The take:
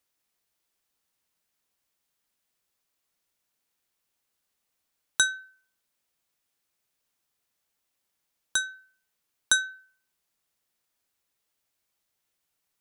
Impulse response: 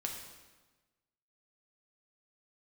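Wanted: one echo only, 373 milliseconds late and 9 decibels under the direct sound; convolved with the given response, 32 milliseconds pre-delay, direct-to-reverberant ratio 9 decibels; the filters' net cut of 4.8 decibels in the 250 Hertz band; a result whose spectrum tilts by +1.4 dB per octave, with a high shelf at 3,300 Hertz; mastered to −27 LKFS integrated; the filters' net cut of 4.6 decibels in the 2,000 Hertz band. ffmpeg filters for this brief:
-filter_complex "[0:a]equalizer=frequency=250:width_type=o:gain=-6.5,equalizer=frequency=2000:width_type=o:gain=-8.5,highshelf=frequency=3300:gain=4.5,aecho=1:1:373:0.355,asplit=2[link_01][link_02];[1:a]atrim=start_sample=2205,adelay=32[link_03];[link_02][link_03]afir=irnorm=-1:irlink=0,volume=-9.5dB[link_04];[link_01][link_04]amix=inputs=2:normalize=0,volume=0.5dB"

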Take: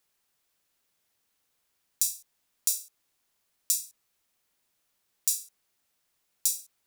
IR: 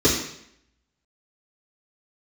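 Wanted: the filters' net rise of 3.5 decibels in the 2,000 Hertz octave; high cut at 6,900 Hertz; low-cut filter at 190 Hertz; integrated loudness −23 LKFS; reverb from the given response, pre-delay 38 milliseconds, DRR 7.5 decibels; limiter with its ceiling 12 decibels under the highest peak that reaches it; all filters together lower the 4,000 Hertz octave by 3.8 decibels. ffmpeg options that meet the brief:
-filter_complex "[0:a]highpass=190,lowpass=6900,equalizer=frequency=2000:width_type=o:gain=8,equalizer=frequency=4000:width_type=o:gain=-5.5,alimiter=limit=-24dB:level=0:latency=1,asplit=2[link_01][link_02];[1:a]atrim=start_sample=2205,adelay=38[link_03];[link_02][link_03]afir=irnorm=-1:irlink=0,volume=-27dB[link_04];[link_01][link_04]amix=inputs=2:normalize=0,volume=18dB"

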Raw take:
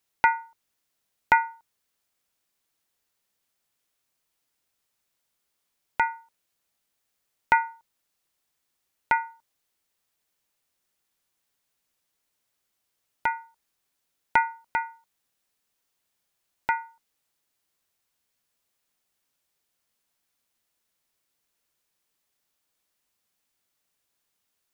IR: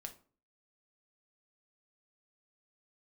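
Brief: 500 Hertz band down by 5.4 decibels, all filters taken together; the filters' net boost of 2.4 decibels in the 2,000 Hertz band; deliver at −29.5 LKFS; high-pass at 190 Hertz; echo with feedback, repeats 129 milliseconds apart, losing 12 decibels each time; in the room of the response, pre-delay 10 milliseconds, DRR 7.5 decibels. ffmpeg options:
-filter_complex "[0:a]highpass=190,equalizer=frequency=500:width_type=o:gain=-7.5,equalizer=frequency=2000:width_type=o:gain=4,aecho=1:1:129|258|387:0.251|0.0628|0.0157,asplit=2[link_01][link_02];[1:a]atrim=start_sample=2205,adelay=10[link_03];[link_02][link_03]afir=irnorm=-1:irlink=0,volume=-3dB[link_04];[link_01][link_04]amix=inputs=2:normalize=0,volume=-3.5dB"

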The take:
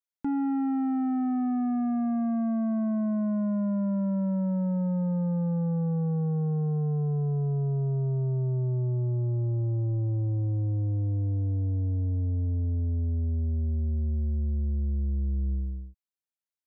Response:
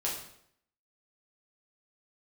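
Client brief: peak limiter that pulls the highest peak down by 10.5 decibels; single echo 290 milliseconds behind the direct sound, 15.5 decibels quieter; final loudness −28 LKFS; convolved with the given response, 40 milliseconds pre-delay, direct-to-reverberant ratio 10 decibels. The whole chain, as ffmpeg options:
-filter_complex "[0:a]alimiter=level_in=12dB:limit=-24dB:level=0:latency=1,volume=-12dB,aecho=1:1:290:0.168,asplit=2[link_01][link_02];[1:a]atrim=start_sample=2205,adelay=40[link_03];[link_02][link_03]afir=irnorm=-1:irlink=0,volume=-15dB[link_04];[link_01][link_04]amix=inputs=2:normalize=0,volume=10.5dB"

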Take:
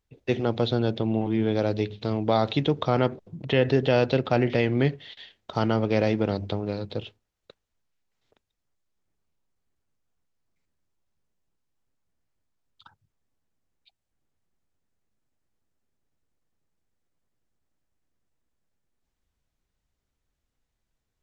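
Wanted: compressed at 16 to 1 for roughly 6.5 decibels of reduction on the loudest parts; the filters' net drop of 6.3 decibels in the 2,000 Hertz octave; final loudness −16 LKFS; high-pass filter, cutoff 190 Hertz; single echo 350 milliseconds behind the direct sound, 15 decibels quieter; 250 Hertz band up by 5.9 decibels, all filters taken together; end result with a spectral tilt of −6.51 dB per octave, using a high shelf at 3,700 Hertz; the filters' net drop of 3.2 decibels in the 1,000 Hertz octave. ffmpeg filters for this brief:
ffmpeg -i in.wav -af "highpass=190,equalizer=frequency=250:width_type=o:gain=9,equalizer=frequency=1000:width_type=o:gain=-4,equalizer=frequency=2000:width_type=o:gain=-6,highshelf=frequency=3700:gain=-4,acompressor=threshold=-20dB:ratio=16,aecho=1:1:350:0.178,volume=11dB" out.wav

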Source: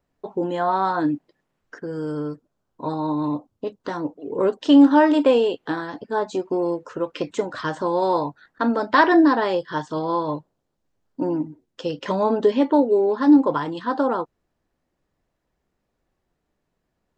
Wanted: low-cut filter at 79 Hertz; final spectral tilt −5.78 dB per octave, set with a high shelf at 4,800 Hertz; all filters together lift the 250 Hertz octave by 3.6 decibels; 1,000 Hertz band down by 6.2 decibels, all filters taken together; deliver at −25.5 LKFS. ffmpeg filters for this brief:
ffmpeg -i in.wav -af "highpass=79,equalizer=frequency=250:width_type=o:gain=5,equalizer=frequency=1000:width_type=o:gain=-7.5,highshelf=frequency=4800:gain=-3,volume=-6dB" out.wav

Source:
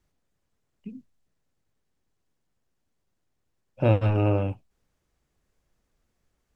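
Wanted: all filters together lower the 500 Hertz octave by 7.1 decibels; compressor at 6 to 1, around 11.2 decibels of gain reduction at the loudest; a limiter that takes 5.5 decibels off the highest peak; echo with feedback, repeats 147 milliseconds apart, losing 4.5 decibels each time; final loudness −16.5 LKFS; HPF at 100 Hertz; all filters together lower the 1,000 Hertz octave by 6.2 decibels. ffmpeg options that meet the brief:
ffmpeg -i in.wav -af "highpass=100,equalizer=frequency=500:width_type=o:gain=-7,equalizer=frequency=1000:width_type=o:gain=-5.5,acompressor=threshold=-30dB:ratio=6,alimiter=level_in=1.5dB:limit=-24dB:level=0:latency=1,volume=-1.5dB,aecho=1:1:147|294|441|588|735|882|1029|1176|1323:0.596|0.357|0.214|0.129|0.0772|0.0463|0.0278|0.0167|0.01,volume=22dB" out.wav

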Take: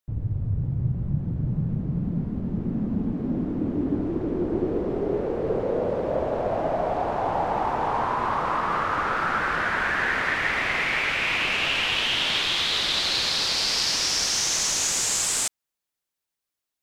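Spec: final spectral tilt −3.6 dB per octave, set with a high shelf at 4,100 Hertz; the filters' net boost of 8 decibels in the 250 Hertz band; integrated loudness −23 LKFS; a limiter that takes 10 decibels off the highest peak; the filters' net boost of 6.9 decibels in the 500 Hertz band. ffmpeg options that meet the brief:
ffmpeg -i in.wav -af "equalizer=frequency=250:width_type=o:gain=8.5,equalizer=frequency=500:width_type=o:gain=6,highshelf=frequency=4100:gain=7,alimiter=limit=-15dB:level=0:latency=1" out.wav

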